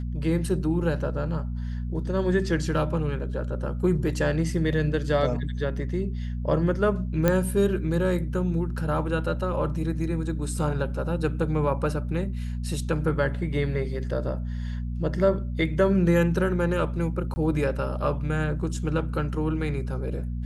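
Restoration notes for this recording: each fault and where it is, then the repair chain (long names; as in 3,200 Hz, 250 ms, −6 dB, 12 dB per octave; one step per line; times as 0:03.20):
mains hum 60 Hz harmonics 4 −30 dBFS
0:07.28: click −8 dBFS
0:17.34–0:17.36: drop-out 20 ms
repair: click removal
hum removal 60 Hz, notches 4
repair the gap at 0:17.34, 20 ms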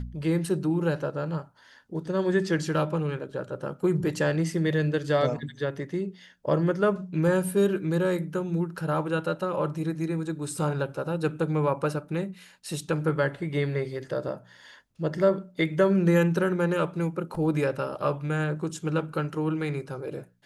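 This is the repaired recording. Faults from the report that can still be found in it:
none of them is left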